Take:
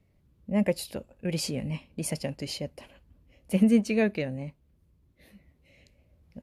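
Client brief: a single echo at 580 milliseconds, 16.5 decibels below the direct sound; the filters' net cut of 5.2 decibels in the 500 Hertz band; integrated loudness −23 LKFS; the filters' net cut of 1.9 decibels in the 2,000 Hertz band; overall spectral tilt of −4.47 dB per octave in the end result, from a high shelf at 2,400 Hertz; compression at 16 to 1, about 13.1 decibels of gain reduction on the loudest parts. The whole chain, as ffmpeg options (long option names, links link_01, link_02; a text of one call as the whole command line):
ffmpeg -i in.wav -af "equalizer=frequency=500:width_type=o:gain=-6,equalizer=frequency=2000:width_type=o:gain=-4,highshelf=frequency=2400:gain=3.5,acompressor=threshold=-30dB:ratio=16,aecho=1:1:580:0.15,volume=13.5dB" out.wav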